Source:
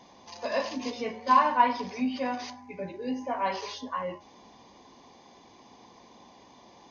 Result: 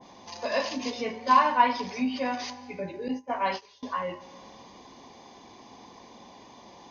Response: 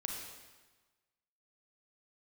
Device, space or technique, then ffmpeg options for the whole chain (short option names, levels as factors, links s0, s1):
compressed reverb return: -filter_complex "[0:a]asplit=2[s0][s1];[1:a]atrim=start_sample=2205[s2];[s1][s2]afir=irnorm=-1:irlink=0,acompressor=threshold=0.00708:ratio=5,volume=0.708[s3];[s0][s3]amix=inputs=2:normalize=0,asettb=1/sr,asplit=3[s4][s5][s6];[s4]atrim=end=3.084[s7];[s5]atrim=start=3.08:end=3.83,asetpts=PTS-STARTPTS,afade=t=in:d=0.004:c=qsin,afade=t=out:st=0.746:d=0.004:c=qsin,agate=range=0.0891:threshold=0.0282:ratio=16:detection=peak[s8];[s6]atrim=start=3.826[s9];[s7][s8]acrossfade=d=0.004:c1=hsin:c2=qsin[s10];[s10][s9]acrossfade=d=0.004:c1=qsin:c2=hsin,adynamicequalizer=threshold=0.0178:dfrequency=1600:dqfactor=0.7:tfrequency=1600:tqfactor=0.7:attack=5:release=100:ratio=0.375:range=2:mode=boostabove:tftype=highshelf"